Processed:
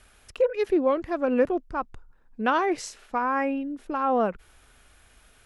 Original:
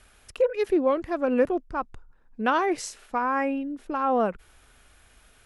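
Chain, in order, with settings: dynamic bell 9.8 kHz, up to -5 dB, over -58 dBFS, Q 1.3

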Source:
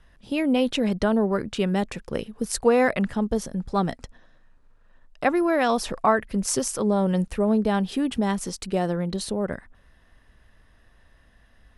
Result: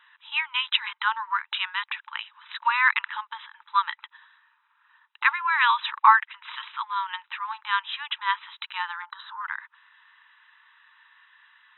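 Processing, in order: brick-wall FIR band-pass 860–4000 Hz; 9.02–9.42 s: resonant high shelf 1.9 kHz -7.5 dB, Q 3; trim +8 dB

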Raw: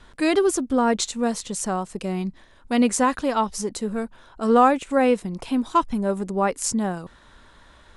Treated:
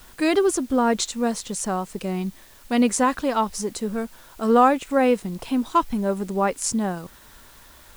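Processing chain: added noise white -52 dBFS

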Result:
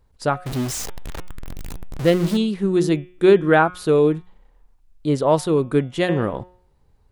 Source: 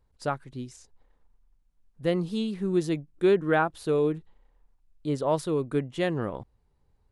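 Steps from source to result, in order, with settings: 0.46–2.37 s: jump at every zero crossing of -31.5 dBFS; de-hum 180.9 Hz, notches 20; trim +8.5 dB

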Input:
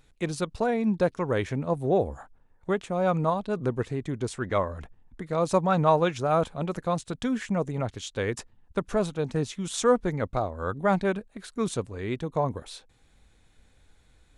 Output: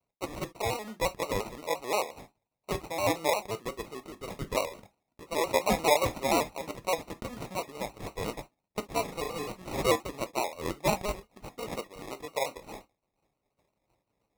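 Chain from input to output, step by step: expander -50 dBFS; high-pass 660 Hz 12 dB/octave; sample-and-hold 28×; 9.04–9.50 s: flutter echo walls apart 6 m, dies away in 0.67 s; gated-style reverb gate 90 ms falling, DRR 8.5 dB; vibrato with a chosen wave square 5.7 Hz, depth 100 cents

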